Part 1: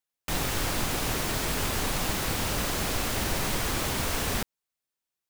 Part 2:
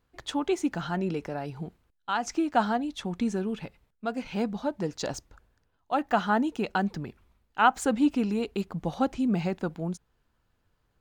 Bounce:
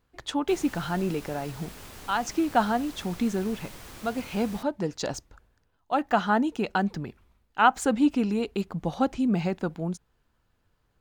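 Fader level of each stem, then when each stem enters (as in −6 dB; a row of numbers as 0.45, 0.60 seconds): −16.0, +1.5 decibels; 0.20, 0.00 seconds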